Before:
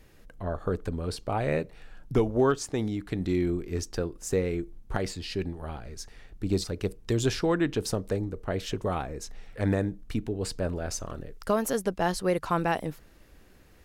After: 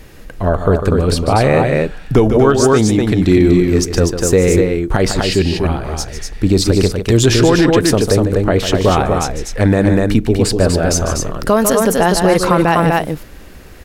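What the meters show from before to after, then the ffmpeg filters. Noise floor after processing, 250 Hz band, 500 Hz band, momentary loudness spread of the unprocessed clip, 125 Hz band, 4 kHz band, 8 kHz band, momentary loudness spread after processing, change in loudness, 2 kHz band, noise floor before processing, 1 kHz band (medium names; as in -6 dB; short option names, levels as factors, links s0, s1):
-35 dBFS, +17.0 dB, +16.0 dB, 12 LU, +17.0 dB, +17.5 dB, +18.0 dB, 8 LU, +16.5 dB, +16.0 dB, -55 dBFS, +16.0 dB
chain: -af "aecho=1:1:148.7|244.9:0.282|0.562,alimiter=level_in=7.94:limit=0.891:release=50:level=0:latency=1,volume=0.891"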